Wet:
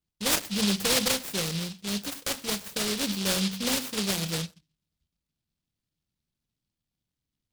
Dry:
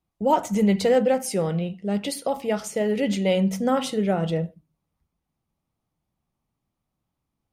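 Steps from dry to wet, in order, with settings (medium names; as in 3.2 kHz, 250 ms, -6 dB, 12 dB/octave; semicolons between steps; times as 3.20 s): delay time shaken by noise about 3.8 kHz, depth 0.4 ms; trim -6 dB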